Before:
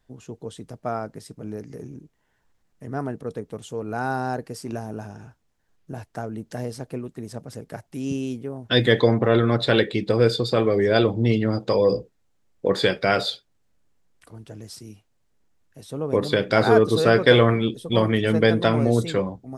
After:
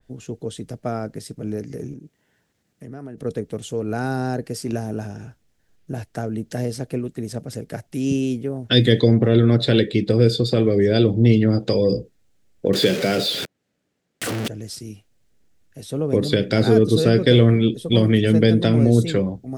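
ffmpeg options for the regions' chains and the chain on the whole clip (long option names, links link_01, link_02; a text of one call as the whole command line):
ffmpeg -i in.wav -filter_complex "[0:a]asettb=1/sr,asplit=3[link_01][link_02][link_03];[link_01]atrim=end=1.934[link_04];[link_02]atrim=start=1.93:end=3.18,asetpts=PTS-STARTPTS,afade=type=in:duration=0.004:curve=qsin,afade=type=out:start_time=1.246:duration=0.004:curve=qsin,highpass=140,lowshelf=frequency=180:gain=5.5,acompressor=threshold=-43dB:ratio=2.5:attack=3.2:release=140:knee=1:detection=peak[link_05];[link_03]atrim=start=3.176[link_06];[link_04][link_05]acrossfade=duration=0.004:curve1=hsin:curve2=qsin[link_07];[link_07][link_06]acrossfade=duration=0.004:curve1=qsin:curve2=hsin,asettb=1/sr,asplit=3[link_08][link_09][link_10];[link_08]atrim=end=12.734[link_11];[link_09]atrim=start=12.73:end=14.48,asetpts=PTS-STARTPTS,afade=type=in:duration=0.004:curve=qsin,afade=type=out:start_time=1.746:duration=0.004:curve=qsin,aeval=exprs='val(0)+0.5*0.0891*sgn(val(0))':channel_layout=same,highpass=170,aemphasis=mode=reproduction:type=cd[link_12];[link_10]atrim=start=14.476[link_13];[link_11][link_12]acrossfade=duration=0.004:curve1=hsin:curve2=qsin[link_14];[link_14][link_13]acrossfade=duration=0.004:curve1=qsin:curve2=hsin,equalizer=frequency=1000:width_type=o:width=0.84:gain=-9,acrossover=split=400|3000[link_15][link_16][link_17];[link_16]acompressor=threshold=-32dB:ratio=6[link_18];[link_15][link_18][link_17]amix=inputs=3:normalize=0,adynamicequalizer=threshold=0.00794:dfrequency=2600:dqfactor=0.7:tfrequency=2600:tqfactor=0.7:attack=5:release=100:ratio=0.375:range=2:mode=cutabove:tftype=highshelf,volume=6.5dB" out.wav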